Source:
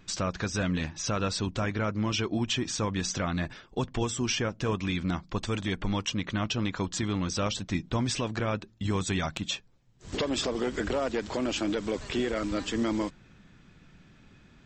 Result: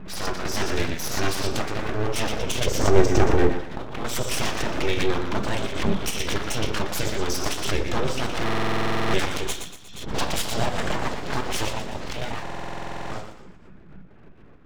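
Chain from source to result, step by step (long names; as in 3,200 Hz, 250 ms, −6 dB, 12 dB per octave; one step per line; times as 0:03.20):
gate pattern "xx.x.xx." 167 BPM −12 dB
convolution reverb RT60 0.45 s, pre-delay 5 ms, DRR 3 dB
low-pass that shuts in the quiet parts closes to 1,100 Hz, open at −24.5 dBFS
0:02.66–0:03.52: octave-band graphic EQ 125/250/500/4,000 Hz +10/+8/+5/−11 dB
0:11.75–0:12.45: downward compressor, threshold −30 dBFS, peak gain reduction 7 dB
feedback echo with a high-pass in the loop 118 ms, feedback 42%, high-pass 320 Hz, level −6.5 dB
full-wave rectification
buffer that repeats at 0:08.44/0:12.42, samples 2,048, times 14
background raised ahead of every attack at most 63 dB per second
level +5.5 dB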